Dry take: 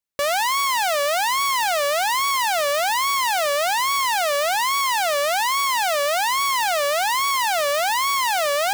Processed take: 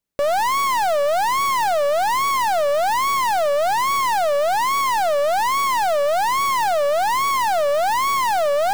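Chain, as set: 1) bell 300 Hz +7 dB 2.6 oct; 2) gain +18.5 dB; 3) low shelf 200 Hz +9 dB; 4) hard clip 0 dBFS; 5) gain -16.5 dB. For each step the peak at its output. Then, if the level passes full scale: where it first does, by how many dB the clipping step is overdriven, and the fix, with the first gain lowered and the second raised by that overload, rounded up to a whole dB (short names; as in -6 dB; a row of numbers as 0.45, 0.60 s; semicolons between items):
-10.5, +8.0, +10.0, 0.0, -16.5 dBFS; step 2, 10.0 dB; step 2 +8.5 dB, step 5 -6.5 dB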